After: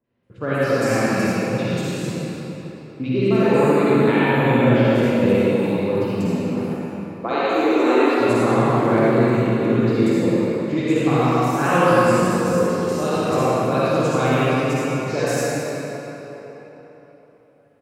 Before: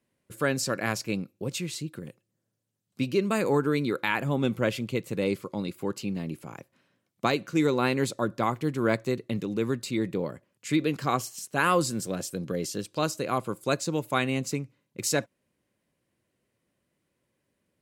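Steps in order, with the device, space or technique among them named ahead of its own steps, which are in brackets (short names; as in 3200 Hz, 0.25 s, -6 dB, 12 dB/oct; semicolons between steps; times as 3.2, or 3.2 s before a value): 6.54–8.19 steep high-pass 280 Hz 48 dB/oct; three bands offset in time lows, mids, highs 40/230 ms, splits 1500/4800 Hz; spring tank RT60 1.4 s, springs 40/59 ms, chirp 50 ms, DRR 4.5 dB; swimming-pool hall (reverb RT60 3.9 s, pre-delay 45 ms, DRR -9.5 dB; high shelf 4600 Hz -7 dB)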